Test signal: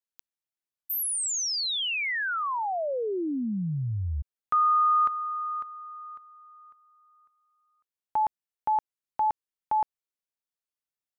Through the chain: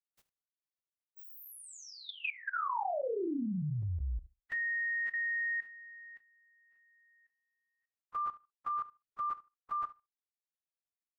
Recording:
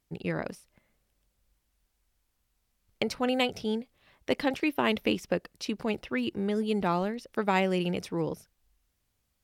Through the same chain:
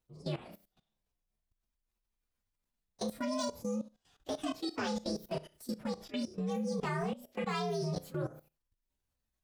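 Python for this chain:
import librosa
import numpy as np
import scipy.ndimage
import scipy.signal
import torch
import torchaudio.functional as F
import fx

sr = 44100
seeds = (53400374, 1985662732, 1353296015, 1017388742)

y = fx.partial_stretch(x, sr, pct=126)
y = fx.room_flutter(y, sr, wall_m=5.6, rt60_s=0.26)
y = fx.level_steps(y, sr, step_db=17)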